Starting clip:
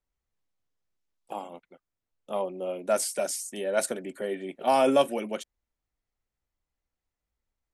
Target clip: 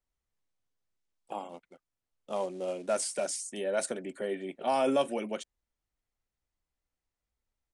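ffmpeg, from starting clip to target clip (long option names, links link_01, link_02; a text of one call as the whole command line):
ffmpeg -i in.wav -filter_complex "[0:a]asplit=2[link_01][link_02];[link_02]alimiter=limit=-21.5dB:level=0:latency=1:release=66,volume=1dB[link_03];[link_01][link_03]amix=inputs=2:normalize=0,asettb=1/sr,asplit=3[link_04][link_05][link_06];[link_04]atrim=end=1.494[link_07];[link_05]atrim=start=1.49:end=3.27,asetpts=PTS-STARTPTS,afade=type=in:duration=0.004:curve=qsin,afade=type=out:start_time=1.776:duration=0.004:curve=qsin,acrusher=bits=5:mode=log:mix=0:aa=0.000001[link_08];[link_06]atrim=start=3.266[link_09];[link_07][link_08]acrossfade=duration=0.004:curve1=hsin:curve2=qsin[link_10];[link_10][link_09]acrossfade=duration=0.004:curve1=qsin:curve2=hsin,aresample=22050,aresample=44100,volume=-8.5dB" out.wav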